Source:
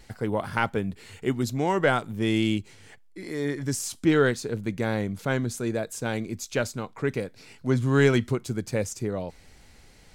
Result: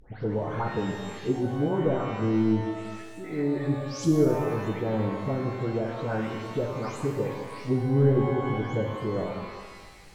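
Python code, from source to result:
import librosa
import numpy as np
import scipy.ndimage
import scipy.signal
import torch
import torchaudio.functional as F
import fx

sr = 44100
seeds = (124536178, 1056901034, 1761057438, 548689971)

y = fx.spec_delay(x, sr, highs='late', ms=304)
y = fx.env_lowpass_down(y, sr, base_hz=460.0, full_db=-22.5)
y = fx.rev_shimmer(y, sr, seeds[0], rt60_s=1.4, semitones=12, shimmer_db=-8, drr_db=2.5)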